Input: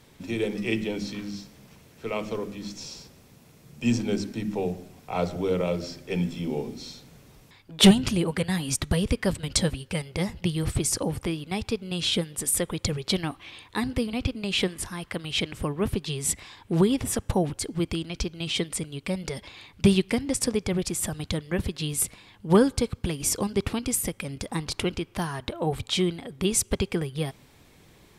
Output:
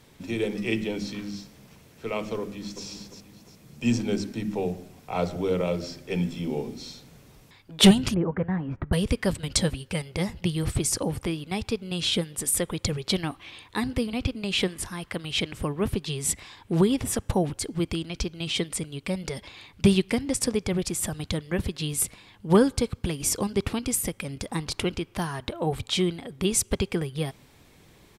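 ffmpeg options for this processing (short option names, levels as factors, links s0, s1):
-filter_complex "[0:a]asplit=2[s0][s1];[s1]afade=t=in:st=2.41:d=0.01,afade=t=out:st=2.85:d=0.01,aecho=0:1:350|700|1050|1400:0.375837|0.150335|0.060134|0.0240536[s2];[s0][s2]amix=inputs=2:normalize=0,asettb=1/sr,asplit=3[s3][s4][s5];[s3]atrim=end=8.144[s6];[s4]atrim=start=8.14:end=8.93,asetpts=PTS-STARTPTS,afade=t=in:d=0.004:c=qsin,afade=t=out:st=0.786:d=0.004:c=qsin,lowpass=f=1600:w=0.5412,lowpass=f=1600:w=1.3066[s7];[s5]atrim=start=8.926[s8];[s6][s7]acrossfade=d=0.004:c1=hsin:c2=qsin[s9];[s9][s8]acrossfade=d=0.004:c1=qsin:c2=hsin"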